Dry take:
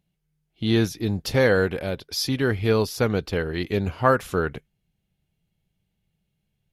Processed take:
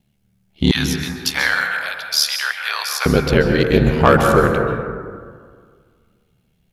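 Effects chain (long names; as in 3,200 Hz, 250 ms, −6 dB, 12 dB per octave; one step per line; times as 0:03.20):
0:00.71–0:03.06: Bessel high-pass filter 1,400 Hz, order 8
ring modulation 37 Hz
soft clipping −14 dBFS, distortion −15 dB
dense smooth reverb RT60 1.9 s, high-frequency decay 0.3×, pre-delay 120 ms, DRR 4.5 dB
boost into a limiter +14.5 dB
level −1 dB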